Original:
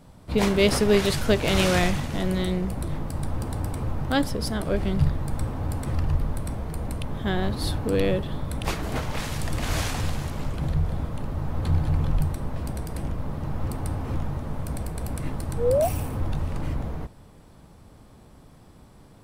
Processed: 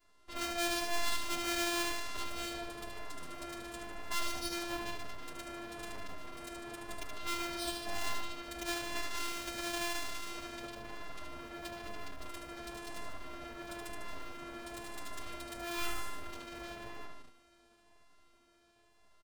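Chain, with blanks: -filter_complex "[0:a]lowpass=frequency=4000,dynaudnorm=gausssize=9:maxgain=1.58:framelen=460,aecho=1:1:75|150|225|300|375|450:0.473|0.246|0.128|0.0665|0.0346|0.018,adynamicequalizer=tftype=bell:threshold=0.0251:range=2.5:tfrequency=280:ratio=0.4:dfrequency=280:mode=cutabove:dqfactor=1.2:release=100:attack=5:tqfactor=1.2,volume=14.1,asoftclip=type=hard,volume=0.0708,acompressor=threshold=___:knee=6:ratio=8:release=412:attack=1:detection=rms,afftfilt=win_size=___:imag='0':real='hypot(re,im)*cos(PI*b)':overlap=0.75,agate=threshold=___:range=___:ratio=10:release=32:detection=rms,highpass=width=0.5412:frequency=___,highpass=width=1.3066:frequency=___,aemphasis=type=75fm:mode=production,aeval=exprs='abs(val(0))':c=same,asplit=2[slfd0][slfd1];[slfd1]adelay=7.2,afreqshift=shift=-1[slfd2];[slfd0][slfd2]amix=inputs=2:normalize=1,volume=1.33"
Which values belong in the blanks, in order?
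0.0501, 512, 0.00562, 0.447, 91, 91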